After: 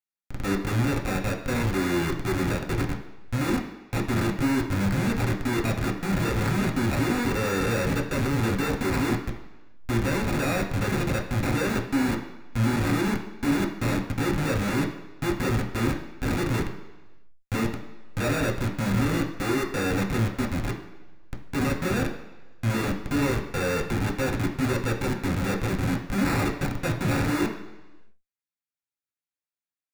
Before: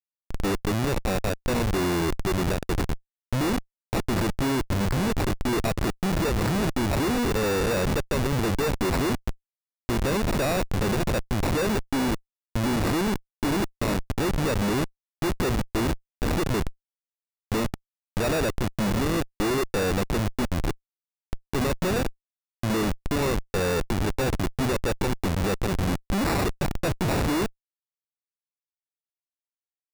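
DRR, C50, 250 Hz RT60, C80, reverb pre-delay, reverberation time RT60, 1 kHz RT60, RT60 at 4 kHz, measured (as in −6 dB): 0.5 dB, 8.5 dB, 1.0 s, 11.0 dB, 3 ms, 1.1 s, 1.1 s, 1.2 s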